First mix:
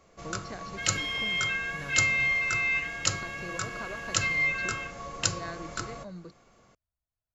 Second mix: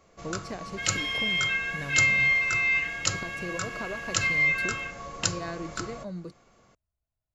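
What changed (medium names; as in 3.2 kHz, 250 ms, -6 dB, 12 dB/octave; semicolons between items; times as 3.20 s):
speech: remove rippled Chebyshev low-pass 5.8 kHz, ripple 6 dB; second sound: send +6.5 dB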